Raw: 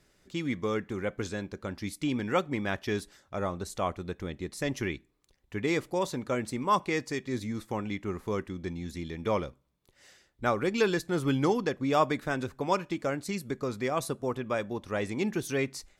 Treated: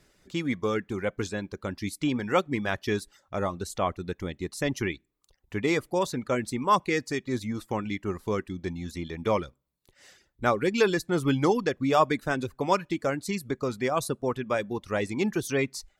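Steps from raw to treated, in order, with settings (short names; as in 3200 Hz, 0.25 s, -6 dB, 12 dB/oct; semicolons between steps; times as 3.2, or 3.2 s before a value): reverb removal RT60 0.57 s; gain +3.5 dB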